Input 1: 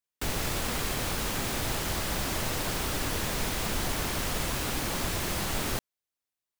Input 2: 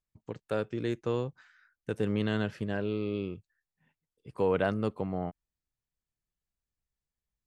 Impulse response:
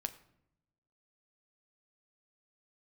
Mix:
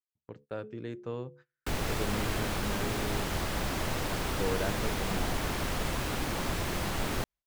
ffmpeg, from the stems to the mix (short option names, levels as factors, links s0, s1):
-filter_complex "[0:a]adelay=1450,volume=1[s0];[1:a]bandreject=f=71.31:t=h:w=4,bandreject=f=142.62:t=h:w=4,bandreject=f=213.93:t=h:w=4,bandreject=f=285.24:t=h:w=4,bandreject=f=356.55:t=h:w=4,bandreject=f=427.86:t=h:w=4,bandreject=f=499.17:t=h:w=4,bandreject=f=570.48:t=h:w=4,volume=0.473,asplit=2[s1][s2];[s2]volume=0.075[s3];[2:a]atrim=start_sample=2205[s4];[s3][s4]afir=irnorm=-1:irlink=0[s5];[s0][s1][s5]amix=inputs=3:normalize=0,agate=range=0.0794:threshold=0.002:ratio=16:detection=peak,highshelf=f=3900:g=-8"